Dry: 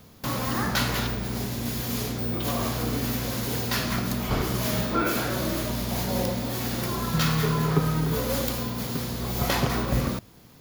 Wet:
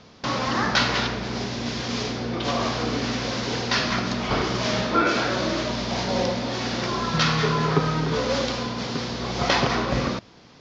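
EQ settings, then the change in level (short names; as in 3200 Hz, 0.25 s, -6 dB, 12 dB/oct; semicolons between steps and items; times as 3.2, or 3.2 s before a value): steep low-pass 6000 Hz 48 dB/oct; low shelf 190 Hz -11 dB; +6.0 dB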